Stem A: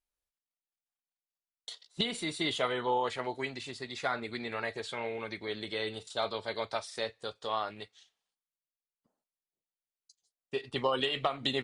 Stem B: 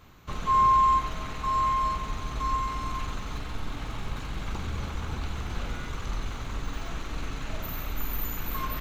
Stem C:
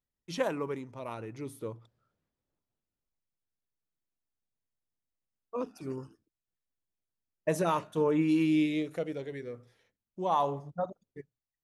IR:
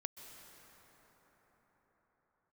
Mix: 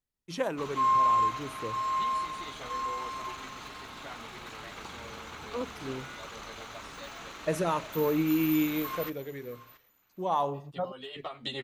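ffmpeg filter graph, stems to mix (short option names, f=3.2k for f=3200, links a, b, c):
-filter_complex "[0:a]asplit=2[a][b];[b]adelay=10.6,afreqshift=-0.95[c];[a][c]amix=inputs=2:normalize=1,volume=-1dB,afade=t=in:st=10.48:d=0.26:silence=0.354813[d];[1:a]highpass=f=610:p=1,adelay=300,volume=-2dB,asplit=2[e][f];[f]volume=-16.5dB[g];[2:a]acontrast=30,volume=-5.5dB,asplit=2[h][i];[i]apad=whole_len=513502[j];[d][j]sidechaincompress=threshold=-46dB:ratio=4:attack=45:release=460[k];[g]aecho=0:1:676|1352|2028|2704:1|0.23|0.0529|0.0122[l];[k][e][h][l]amix=inputs=4:normalize=0"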